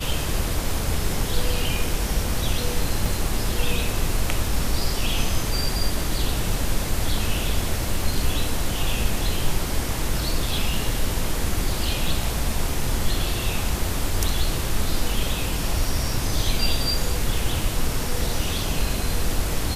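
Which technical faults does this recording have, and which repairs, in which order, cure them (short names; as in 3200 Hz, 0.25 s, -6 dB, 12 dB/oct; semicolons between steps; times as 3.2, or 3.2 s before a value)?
3.06 gap 2.9 ms
12.08 gap 3.2 ms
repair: interpolate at 3.06, 2.9 ms; interpolate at 12.08, 3.2 ms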